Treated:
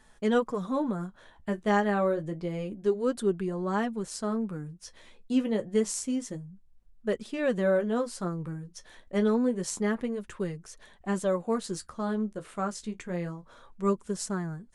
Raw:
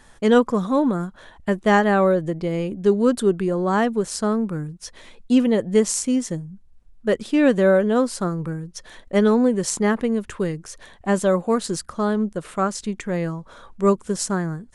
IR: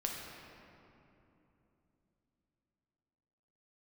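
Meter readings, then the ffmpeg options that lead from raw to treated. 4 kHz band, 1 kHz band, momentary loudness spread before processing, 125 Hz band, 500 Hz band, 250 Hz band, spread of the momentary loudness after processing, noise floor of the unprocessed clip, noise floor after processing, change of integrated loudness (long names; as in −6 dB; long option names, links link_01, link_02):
−9.5 dB, −9.0 dB, 13 LU, −8.5 dB, −9.0 dB, −9.5 dB, 14 LU, −50 dBFS, −58 dBFS, −9.0 dB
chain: -af "flanger=delay=4.6:depth=10:regen=-39:speed=0.28:shape=sinusoidal,volume=-5.5dB"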